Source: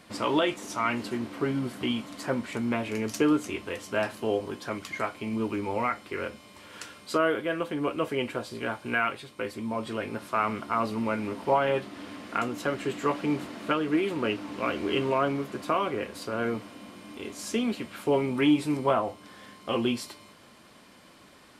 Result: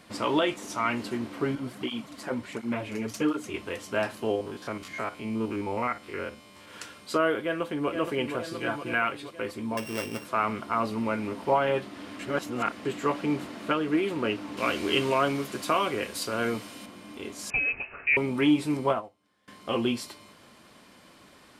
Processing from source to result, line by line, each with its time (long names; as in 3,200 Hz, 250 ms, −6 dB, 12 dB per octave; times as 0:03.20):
0:01.55–0:03.54: through-zero flanger with one copy inverted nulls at 1.4 Hz, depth 8 ms
0:04.31–0:06.68: spectrum averaged block by block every 50 ms
0:07.39–0:07.89: delay throw 470 ms, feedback 65%, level −7.5 dB
0:08.47–0:08.94: comb filter 6 ms
0:09.77–0:10.25: samples sorted by size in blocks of 16 samples
0:12.19–0:12.85: reverse
0:14.57–0:16.86: high-shelf EQ 2,800 Hz +11.5 dB
0:17.50–0:18.17: voice inversion scrambler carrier 2,800 Hz
0:18.88–0:19.48: expander for the loud parts 2.5 to 1, over −36 dBFS